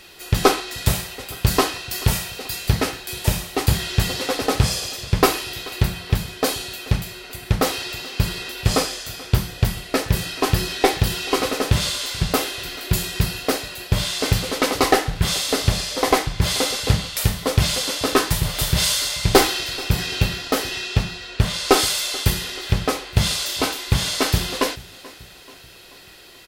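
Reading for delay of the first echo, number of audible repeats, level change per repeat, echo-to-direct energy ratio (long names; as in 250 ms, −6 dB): 434 ms, 3, −5.5 dB, −19.5 dB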